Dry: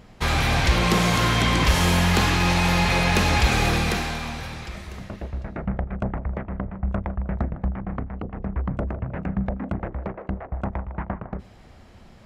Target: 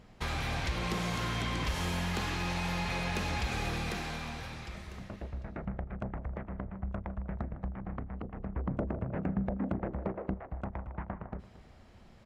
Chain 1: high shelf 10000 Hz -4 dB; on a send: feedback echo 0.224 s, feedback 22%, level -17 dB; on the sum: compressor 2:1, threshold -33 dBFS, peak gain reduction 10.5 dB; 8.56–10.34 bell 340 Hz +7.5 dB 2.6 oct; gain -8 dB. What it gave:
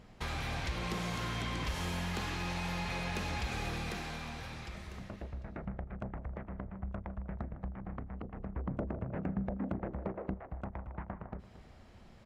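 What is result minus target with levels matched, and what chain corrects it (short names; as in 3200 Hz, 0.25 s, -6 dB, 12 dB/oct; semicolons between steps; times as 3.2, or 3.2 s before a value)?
compressor: peak gain reduction +3 dB
high shelf 10000 Hz -4 dB; on a send: feedback echo 0.224 s, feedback 22%, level -17 dB; on the sum: compressor 2:1, threshold -26.5 dBFS, peak gain reduction 7.5 dB; 8.56–10.34 bell 340 Hz +7.5 dB 2.6 oct; gain -8 dB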